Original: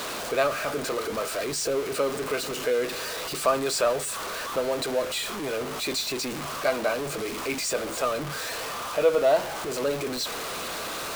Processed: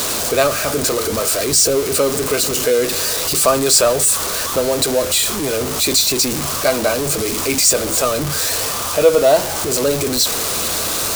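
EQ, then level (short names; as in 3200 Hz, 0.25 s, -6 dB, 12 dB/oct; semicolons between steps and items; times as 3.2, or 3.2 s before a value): tone controls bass -4 dB, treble +13 dB; bell 87 Hz +9.5 dB 0.48 oct; low shelf 320 Hz +11.5 dB; +6.0 dB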